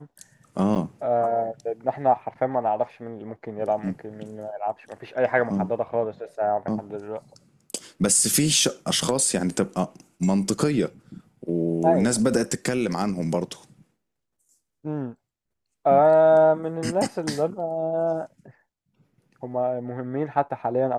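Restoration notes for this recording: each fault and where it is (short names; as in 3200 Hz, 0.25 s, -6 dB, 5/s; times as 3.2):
0.75–0.76 gap 8.5 ms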